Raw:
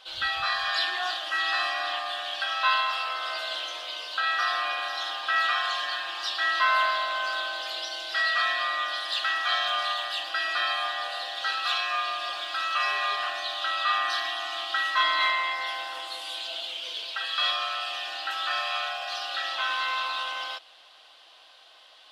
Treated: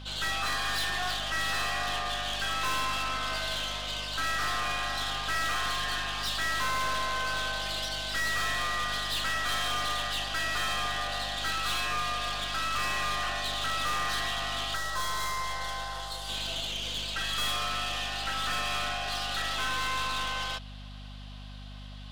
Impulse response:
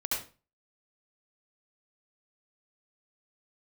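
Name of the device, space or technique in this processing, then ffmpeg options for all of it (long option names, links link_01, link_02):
valve amplifier with mains hum: -filter_complex "[0:a]aeval=exprs='(tanh(44.7*val(0)+0.65)-tanh(0.65))/44.7':channel_layout=same,aeval=exprs='val(0)+0.00447*(sin(2*PI*50*n/s)+sin(2*PI*2*50*n/s)/2+sin(2*PI*3*50*n/s)/3+sin(2*PI*4*50*n/s)/4+sin(2*PI*5*50*n/s)/5)':channel_layout=same,asettb=1/sr,asplit=3[link_01][link_02][link_03];[link_01]atrim=end=14.754[link_04];[link_02]atrim=start=14.75:end=16.29,asetpts=PTS-STARTPTS,afade=type=in:duration=0.004:curve=qsin,afade=type=out:start_time=1.536:duration=0.004:curve=qsin,equalizer=frequency=100:width_type=o:width=0.67:gain=-3,equalizer=frequency=250:width_type=o:width=0.67:gain=-12,equalizer=frequency=2500:width_type=o:width=0.67:gain=-11[link_05];[link_03]atrim=start=16.286[link_06];[link_04][link_05]acrossfade=duration=0.004:curve1=hsin:curve2=qsin[link_07];[link_07][link_06]acrossfade=duration=0.004:curve1=qsin:curve2=hsin,volume=4.5dB"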